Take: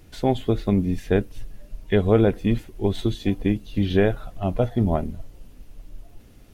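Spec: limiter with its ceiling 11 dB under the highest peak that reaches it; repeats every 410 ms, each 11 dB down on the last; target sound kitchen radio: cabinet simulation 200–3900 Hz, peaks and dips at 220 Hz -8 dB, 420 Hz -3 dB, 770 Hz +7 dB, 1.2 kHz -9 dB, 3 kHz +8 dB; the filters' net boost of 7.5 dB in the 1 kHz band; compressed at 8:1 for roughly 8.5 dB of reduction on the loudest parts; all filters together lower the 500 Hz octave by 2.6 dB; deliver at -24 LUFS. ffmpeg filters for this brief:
-af "equalizer=f=500:t=o:g=-3,equalizer=f=1000:t=o:g=6.5,acompressor=threshold=0.0794:ratio=8,alimiter=limit=0.0841:level=0:latency=1,highpass=200,equalizer=f=220:t=q:w=4:g=-8,equalizer=f=420:t=q:w=4:g=-3,equalizer=f=770:t=q:w=4:g=7,equalizer=f=1200:t=q:w=4:g=-9,equalizer=f=3000:t=q:w=4:g=8,lowpass=f=3900:w=0.5412,lowpass=f=3900:w=1.3066,aecho=1:1:410|820|1230:0.282|0.0789|0.0221,volume=4.73"

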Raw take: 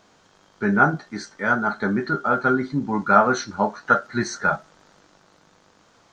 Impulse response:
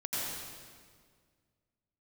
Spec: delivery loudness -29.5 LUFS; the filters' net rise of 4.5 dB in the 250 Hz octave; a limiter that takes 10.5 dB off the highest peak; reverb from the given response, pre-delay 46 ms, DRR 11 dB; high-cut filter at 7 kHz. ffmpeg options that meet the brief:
-filter_complex "[0:a]lowpass=7000,equalizer=f=250:t=o:g=5.5,alimiter=limit=0.299:level=0:latency=1,asplit=2[s0][s1];[1:a]atrim=start_sample=2205,adelay=46[s2];[s1][s2]afir=irnorm=-1:irlink=0,volume=0.15[s3];[s0][s3]amix=inputs=2:normalize=0,volume=0.447"

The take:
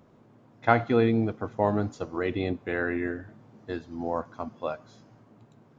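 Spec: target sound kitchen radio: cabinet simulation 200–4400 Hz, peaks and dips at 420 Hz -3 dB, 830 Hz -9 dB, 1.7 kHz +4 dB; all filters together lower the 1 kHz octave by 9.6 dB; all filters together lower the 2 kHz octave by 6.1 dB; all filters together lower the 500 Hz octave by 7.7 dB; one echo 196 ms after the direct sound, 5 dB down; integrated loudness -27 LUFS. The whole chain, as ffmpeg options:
-af "highpass=200,equalizer=f=420:t=q:w=4:g=-3,equalizer=f=830:t=q:w=4:g=-9,equalizer=f=1700:t=q:w=4:g=4,lowpass=f=4400:w=0.5412,lowpass=f=4400:w=1.3066,equalizer=f=500:t=o:g=-5.5,equalizer=f=1000:t=o:g=-4,equalizer=f=2000:t=o:g=-9,aecho=1:1:196:0.562,volume=2.11"

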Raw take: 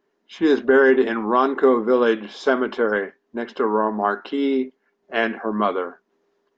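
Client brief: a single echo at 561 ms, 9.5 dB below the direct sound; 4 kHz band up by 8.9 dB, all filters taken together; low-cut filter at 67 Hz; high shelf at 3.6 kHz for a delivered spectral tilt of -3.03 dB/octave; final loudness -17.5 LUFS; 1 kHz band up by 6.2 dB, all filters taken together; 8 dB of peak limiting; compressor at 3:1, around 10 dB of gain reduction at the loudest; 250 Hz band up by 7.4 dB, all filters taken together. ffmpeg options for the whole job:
-af "highpass=67,equalizer=f=250:t=o:g=8.5,equalizer=f=1000:t=o:g=6,highshelf=f=3600:g=7,equalizer=f=4000:t=o:g=7,acompressor=threshold=0.1:ratio=3,alimiter=limit=0.178:level=0:latency=1,aecho=1:1:561:0.335,volume=2.51"

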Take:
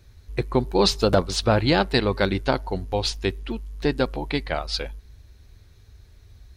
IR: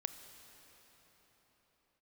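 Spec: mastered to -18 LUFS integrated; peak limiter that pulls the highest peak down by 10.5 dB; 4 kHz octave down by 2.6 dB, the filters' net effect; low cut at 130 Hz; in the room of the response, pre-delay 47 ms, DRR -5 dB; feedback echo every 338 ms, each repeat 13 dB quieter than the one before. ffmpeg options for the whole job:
-filter_complex "[0:a]highpass=130,equalizer=f=4000:t=o:g=-3,alimiter=limit=0.178:level=0:latency=1,aecho=1:1:338|676|1014:0.224|0.0493|0.0108,asplit=2[s0][s1];[1:a]atrim=start_sample=2205,adelay=47[s2];[s1][s2]afir=irnorm=-1:irlink=0,volume=2[s3];[s0][s3]amix=inputs=2:normalize=0,volume=1.68"

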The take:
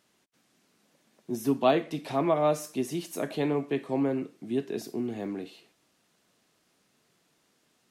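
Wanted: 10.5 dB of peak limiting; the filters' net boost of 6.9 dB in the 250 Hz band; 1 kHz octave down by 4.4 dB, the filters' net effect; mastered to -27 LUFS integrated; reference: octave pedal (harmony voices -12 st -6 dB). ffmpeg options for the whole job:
-filter_complex "[0:a]equalizer=f=250:t=o:g=8.5,equalizer=f=1000:t=o:g=-7.5,alimiter=limit=0.106:level=0:latency=1,asplit=2[s0][s1];[s1]asetrate=22050,aresample=44100,atempo=2,volume=0.501[s2];[s0][s2]amix=inputs=2:normalize=0,volume=1.19"

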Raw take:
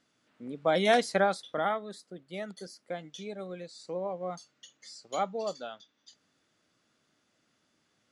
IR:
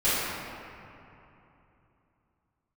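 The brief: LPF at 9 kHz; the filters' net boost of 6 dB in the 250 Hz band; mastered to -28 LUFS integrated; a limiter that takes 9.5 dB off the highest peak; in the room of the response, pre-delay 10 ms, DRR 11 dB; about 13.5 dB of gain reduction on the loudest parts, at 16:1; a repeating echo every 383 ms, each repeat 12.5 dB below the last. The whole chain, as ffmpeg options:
-filter_complex "[0:a]lowpass=9000,equalizer=f=250:t=o:g=8,acompressor=threshold=0.0316:ratio=16,alimiter=level_in=1.78:limit=0.0631:level=0:latency=1,volume=0.562,aecho=1:1:383|766|1149:0.237|0.0569|0.0137,asplit=2[s0][s1];[1:a]atrim=start_sample=2205,adelay=10[s2];[s1][s2]afir=irnorm=-1:irlink=0,volume=0.0473[s3];[s0][s3]amix=inputs=2:normalize=0,volume=3.98"

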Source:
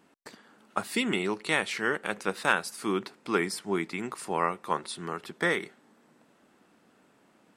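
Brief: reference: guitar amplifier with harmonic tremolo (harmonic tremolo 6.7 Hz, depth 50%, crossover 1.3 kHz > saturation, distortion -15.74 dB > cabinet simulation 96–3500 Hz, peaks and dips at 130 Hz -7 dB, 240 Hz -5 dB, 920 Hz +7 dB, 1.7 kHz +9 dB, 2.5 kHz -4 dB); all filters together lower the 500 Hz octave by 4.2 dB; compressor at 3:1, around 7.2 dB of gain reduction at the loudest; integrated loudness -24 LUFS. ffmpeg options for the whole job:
-filter_complex "[0:a]equalizer=f=500:t=o:g=-5.5,acompressor=threshold=0.0316:ratio=3,acrossover=split=1300[s0][s1];[s0]aeval=exprs='val(0)*(1-0.5/2+0.5/2*cos(2*PI*6.7*n/s))':c=same[s2];[s1]aeval=exprs='val(0)*(1-0.5/2-0.5/2*cos(2*PI*6.7*n/s))':c=same[s3];[s2][s3]amix=inputs=2:normalize=0,asoftclip=threshold=0.0501,highpass=96,equalizer=f=130:t=q:w=4:g=-7,equalizer=f=240:t=q:w=4:g=-5,equalizer=f=920:t=q:w=4:g=7,equalizer=f=1700:t=q:w=4:g=9,equalizer=f=2500:t=q:w=4:g=-4,lowpass=f=3500:w=0.5412,lowpass=f=3500:w=1.3066,volume=4.47"

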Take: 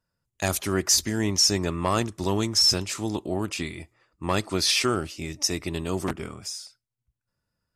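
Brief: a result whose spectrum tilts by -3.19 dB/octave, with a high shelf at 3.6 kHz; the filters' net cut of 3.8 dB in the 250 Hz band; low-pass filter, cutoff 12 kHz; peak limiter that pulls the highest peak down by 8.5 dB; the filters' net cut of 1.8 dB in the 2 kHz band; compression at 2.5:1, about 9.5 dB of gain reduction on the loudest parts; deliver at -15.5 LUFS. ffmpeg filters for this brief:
-af "lowpass=12000,equalizer=f=250:t=o:g=-5.5,equalizer=f=2000:t=o:g=-4,highshelf=f=3600:g=5,acompressor=threshold=0.0398:ratio=2.5,volume=7.5,alimiter=limit=0.596:level=0:latency=1"

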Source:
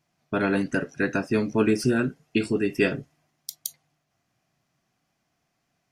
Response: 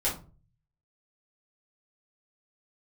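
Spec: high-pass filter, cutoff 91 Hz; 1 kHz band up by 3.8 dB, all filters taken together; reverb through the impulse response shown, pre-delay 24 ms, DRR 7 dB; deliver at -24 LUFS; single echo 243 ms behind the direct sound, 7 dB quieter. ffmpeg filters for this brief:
-filter_complex "[0:a]highpass=91,equalizer=f=1000:t=o:g=5.5,aecho=1:1:243:0.447,asplit=2[s0][s1];[1:a]atrim=start_sample=2205,adelay=24[s2];[s1][s2]afir=irnorm=-1:irlink=0,volume=0.168[s3];[s0][s3]amix=inputs=2:normalize=0,volume=0.944"

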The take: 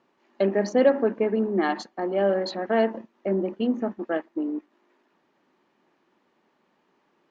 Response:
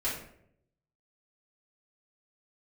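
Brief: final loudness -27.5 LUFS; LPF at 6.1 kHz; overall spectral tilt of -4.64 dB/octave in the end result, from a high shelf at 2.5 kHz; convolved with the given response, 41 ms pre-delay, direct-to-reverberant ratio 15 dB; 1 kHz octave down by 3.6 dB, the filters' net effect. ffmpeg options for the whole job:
-filter_complex "[0:a]lowpass=6100,equalizer=f=1000:t=o:g=-6.5,highshelf=f=2500:g=5.5,asplit=2[s0][s1];[1:a]atrim=start_sample=2205,adelay=41[s2];[s1][s2]afir=irnorm=-1:irlink=0,volume=0.0841[s3];[s0][s3]amix=inputs=2:normalize=0,volume=0.841"

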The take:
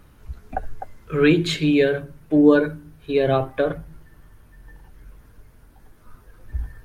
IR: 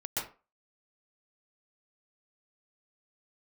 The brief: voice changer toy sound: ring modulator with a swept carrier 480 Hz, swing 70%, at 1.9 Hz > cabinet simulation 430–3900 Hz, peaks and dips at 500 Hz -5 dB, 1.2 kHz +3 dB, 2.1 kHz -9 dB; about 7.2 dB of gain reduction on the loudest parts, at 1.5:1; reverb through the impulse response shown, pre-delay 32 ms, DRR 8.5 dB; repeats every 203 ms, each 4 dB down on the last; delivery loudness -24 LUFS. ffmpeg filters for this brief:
-filter_complex "[0:a]acompressor=threshold=0.0355:ratio=1.5,aecho=1:1:203|406|609|812|1015|1218|1421|1624|1827:0.631|0.398|0.25|0.158|0.0994|0.0626|0.0394|0.0249|0.0157,asplit=2[s0][s1];[1:a]atrim=start_sample=2205,adelay=32[s2];[s1][s2]afir=irnorm=-1:irlink=0,volume=0.224[s3];[s0][s3]amix=inputs=2:normalize=0,aeval=exprs='val(0)*sin(2*PI*480*n/s+480*0.7/1.9*sin(2*PI*1.9*n/s))':c=same,highpass=430,equalizer=f=500:t=q:w=4:g=-5,equalizer=f=1200:t=q:w=4:g=3,equalizer=f=2100:t=q:w=4:g=-9,lowpass=f=3900:w=0.5412,lowpass=f=3900:w=1.3066,volume=2.11"

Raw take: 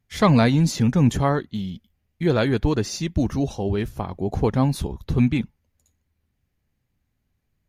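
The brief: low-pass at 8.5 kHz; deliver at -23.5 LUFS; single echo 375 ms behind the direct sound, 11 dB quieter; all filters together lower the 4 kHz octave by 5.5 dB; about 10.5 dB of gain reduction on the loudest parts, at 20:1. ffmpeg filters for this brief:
-af "lowpass=8500,equalizer=f=4000:t=o:g=-6.5,acompressor=threshold=0.0794:ratio=20,aecho=1:1:375:0.282,volume=1.88"

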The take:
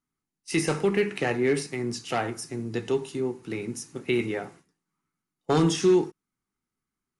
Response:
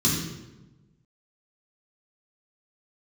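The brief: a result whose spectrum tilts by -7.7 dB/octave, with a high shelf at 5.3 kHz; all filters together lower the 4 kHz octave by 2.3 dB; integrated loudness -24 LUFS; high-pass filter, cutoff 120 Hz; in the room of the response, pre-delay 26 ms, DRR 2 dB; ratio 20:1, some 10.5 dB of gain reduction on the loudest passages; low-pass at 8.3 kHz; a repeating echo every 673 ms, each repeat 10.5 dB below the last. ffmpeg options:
-filter_complex "[0:a]highpass=120,lowpass=8300,equalizer=f=4000:t=o:g=-6.5,highshelf=f=5300:g=7,acompressor=threshold=0.0501:ratio=20,aecho=1:1:673|1346|2019:0.299|0.0896|0.0269,asplit=2[s0][s1];[1:a]atrim=start_sample=2205,adelay=26[s2];[s1][s2]afir=irnorm=-1:irlink=0,volume=0.2[s3];[s0][s3]amix=inputs=2:normalize=0"

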